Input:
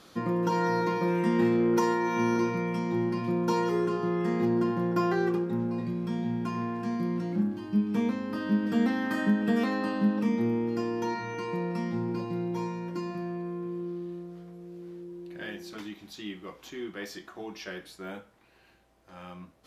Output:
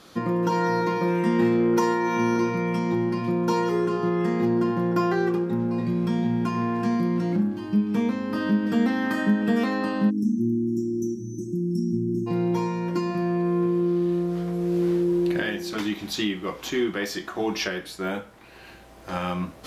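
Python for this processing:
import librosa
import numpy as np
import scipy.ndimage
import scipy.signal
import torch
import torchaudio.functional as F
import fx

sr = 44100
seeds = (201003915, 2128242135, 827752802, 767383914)

y = fx.recorder_agc(x, sr, target_db=-19.5, rise_db_per_s=9.0, max_gain_db=30)
y = fx.brickwall_bandstop(y, sr, low_hz=410.0, high_hz=5300.0, at=(10.09, 12.26), fade=0.02)
y = y * 10.0 ** (3.5 / 20.0)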